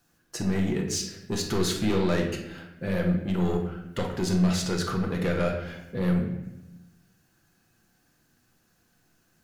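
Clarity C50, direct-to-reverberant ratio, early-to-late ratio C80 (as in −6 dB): 5.5 dB, 1.0 dB, 8.0 dB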